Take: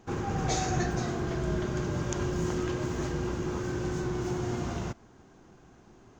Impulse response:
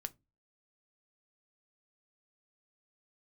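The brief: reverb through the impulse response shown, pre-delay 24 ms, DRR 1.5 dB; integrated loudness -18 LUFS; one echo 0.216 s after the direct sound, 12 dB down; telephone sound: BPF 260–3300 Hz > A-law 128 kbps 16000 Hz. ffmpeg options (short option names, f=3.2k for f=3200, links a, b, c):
-filter_complex "[0:a]aecho=1:1:216:0.251,asplit=2[a][b];[1:a]atrim=start_sample=2205,adelay=24[c];[b][c]afir=irnorm=-1:irlink=0,volume=1dB[d];[a][d]amix=inputs=2:normalize=0,highpass=260,lowpass=3.3k,volume=15dB" -ar 16000 -c:a pcm_alaw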